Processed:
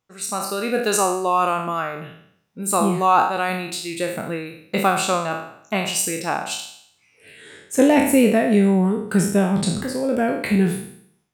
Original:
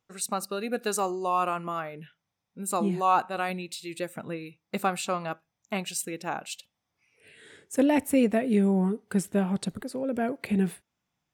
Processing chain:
peak hold with a decay on every bin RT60 0.66 s
automatic gain control gain up to 7 dB

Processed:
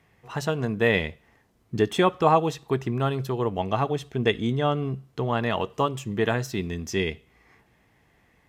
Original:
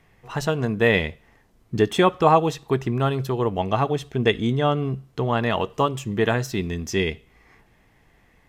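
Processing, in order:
high-pass filter 58 Hz
level −3 dB

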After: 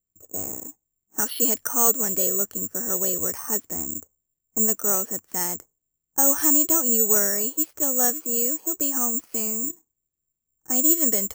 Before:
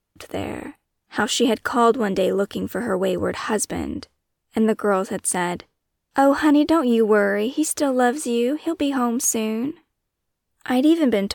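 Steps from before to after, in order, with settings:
low-pass that shuts in the quiet parts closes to 390 Hz, open at −13 dBFS
bad sample-rate conversion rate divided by 6×, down filtered, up zero stuff
level −10.5 dB

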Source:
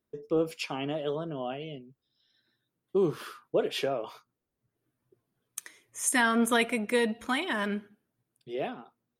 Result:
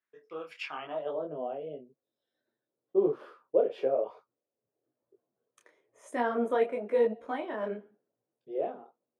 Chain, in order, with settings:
band-pass filter sweep 1,800 Hz → 540 Hz, 0:00.63–0:01.24
micro pitch shift up and down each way 34 cents
level +8.5 dB

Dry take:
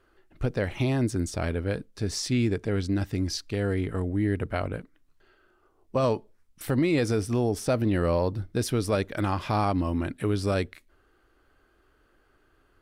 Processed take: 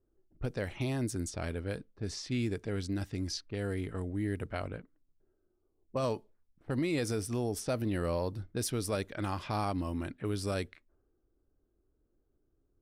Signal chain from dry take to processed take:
low-pass that shuts in the quiet parts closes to 360 Hz, open at −23 dBFS
high-shelf EQ 6,100 Hz +11.5 dB
level −8 dB

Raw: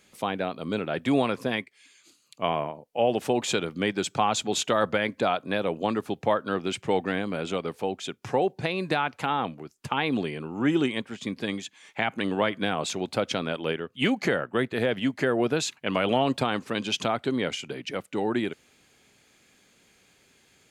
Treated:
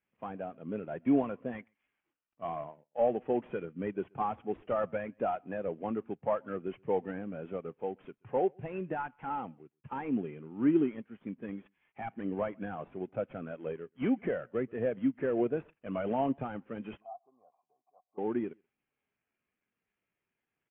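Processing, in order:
variable-slope delta modulation 16 kbit/s
0:17.00–0:18.18: formant resonators in series a
single-tap delay 130 ms −22.5 dB
every bin expanded away from the loudest bin 1.5 to 1
level −3.5 dB

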